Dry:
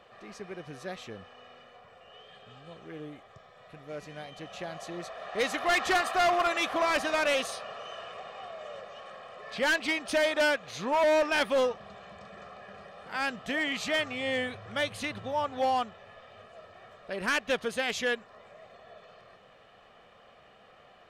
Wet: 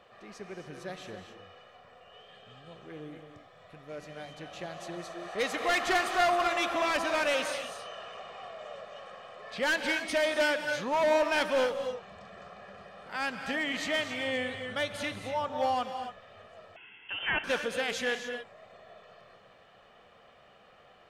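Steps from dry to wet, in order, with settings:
reverb whose tail is shaped and stops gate 300 ms rising, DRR 6.5 dB
0:16.76–0:17.44: voice inversion scrambler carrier 3,300 Hz
level −2 dB

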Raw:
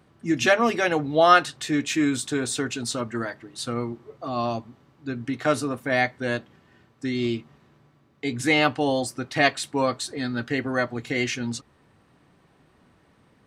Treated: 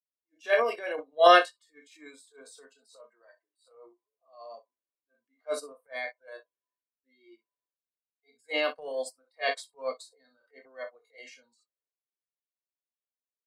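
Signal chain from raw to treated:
elliptic high-pass filter 270 Hz, stop band 40 dB
parametric band 1,200 Hz −6 dB 0.47 octaves
comb filter 1.8 ms, depth 66%
ambience of single reflections 23 ms −8.5 dB, 59 ms −11.5 dB
transient designer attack −9 dB, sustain +6 dB
noise reduction from a noise print of the clip's start 18 dB
expander for the loud parts 2.5 to 1, over −35 dBFS

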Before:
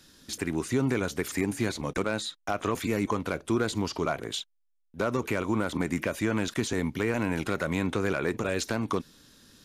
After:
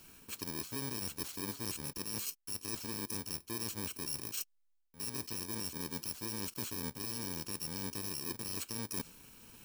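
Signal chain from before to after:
samples in bit-reversed order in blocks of 64 samples
dynamic equaliser 5,600 Hz, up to +5 dB, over −45 dBFS, Q 0.85
reversed playback
downward compressor 10 to 1, threshold −36 dBFS, peak gain reduction 15.5 dB
reversed playback

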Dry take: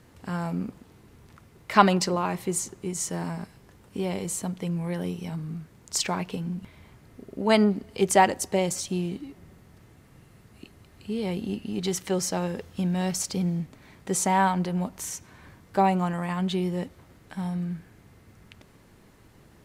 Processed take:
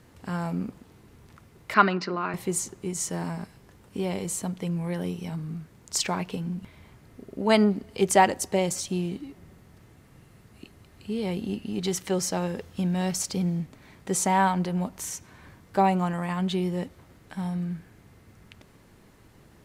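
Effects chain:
0:01.74–0:02.34: loudspeaker in its box 230–4,200 Hz, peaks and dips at 530 Hz −8 dB, 830 Hz −9 dB, 1,400 Hz +6 dB, 3,300 Hz −9 dB

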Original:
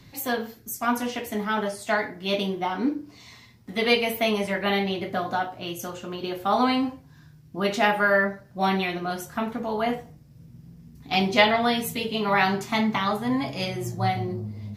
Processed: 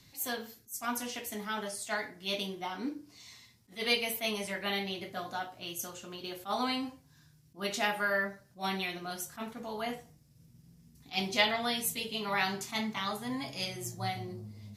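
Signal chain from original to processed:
low-pass filter 11,000 Hz 12 dB per octave
first-order pre-emphasis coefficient 0.8
level that may rise only so fast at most 290 dB per second
level +2 dB

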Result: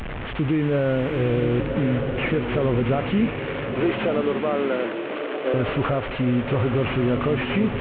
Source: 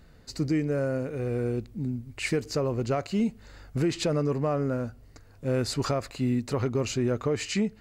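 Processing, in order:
linear delta modulator 16 kbit/s, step −33 dBFS
0:03.26–0:05.54: high-pass filter 330 Hz 24 dB per octave
brickwall limiter −23 dBFS, peak gain reduction 6.5 dB
slow-attack reverb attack 1,200 ms, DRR 5 dB
level +8.5 dB

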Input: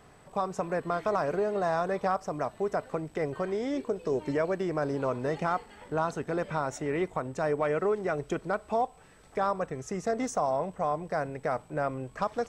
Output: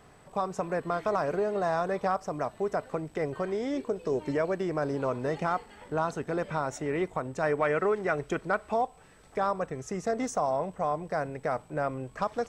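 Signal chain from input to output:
0:07.42–0:08.74: dynamic equaliser 1,800 Hz, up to +6 dB, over −44 dBFS, Q 0.9

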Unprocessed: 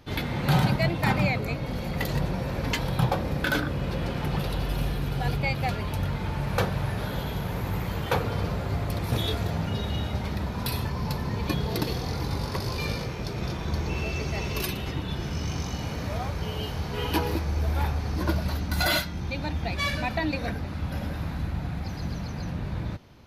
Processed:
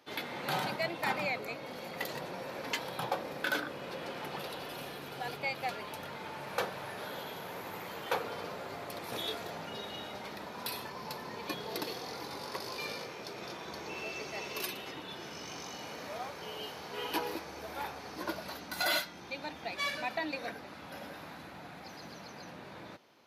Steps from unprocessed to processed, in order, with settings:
high-pass filter 380 Hz 12 dB per octave
level −5.5 dB

